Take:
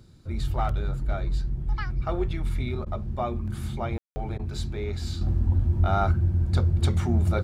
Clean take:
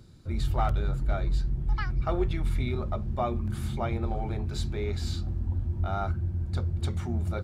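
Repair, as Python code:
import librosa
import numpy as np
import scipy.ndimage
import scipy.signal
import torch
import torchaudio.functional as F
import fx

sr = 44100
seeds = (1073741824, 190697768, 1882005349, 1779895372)

y = fx.fix_ambience(x, sr, seeds[0], print_start_s=0.0, print_end_s=0.5, start_s=3.98, end_s=4.16)
y = fx.fix_interpolate(y, sr, at_s=(2.85, 4.38), length_ms=12.0)
y = fx.gain(y, sr, db=fx.steps((0.0, 0.0), (5.21, -7.0)))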